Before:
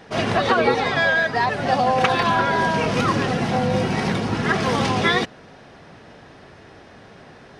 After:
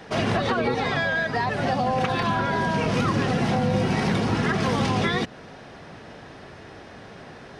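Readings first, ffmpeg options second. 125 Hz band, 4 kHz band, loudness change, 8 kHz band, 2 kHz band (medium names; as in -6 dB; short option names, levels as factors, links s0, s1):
0.0 dB, -4.5 dB, -3.5 dB, -3.5 dB, -5.5 dB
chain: -filter_complex "[0:a]acrossover=split=270[s0][s1];[s1]acompressor=threshold=0.0631:ratio=4[s2];[s0][s2]amix=inputs=2:normalize=0,asplit=2[s3][s4];[s4]alimiter=limit=0.106:level=0:latency=1,volume=0.794[s5];[s3][s5]amix=inputs=2:normalize=0,volume=0.708"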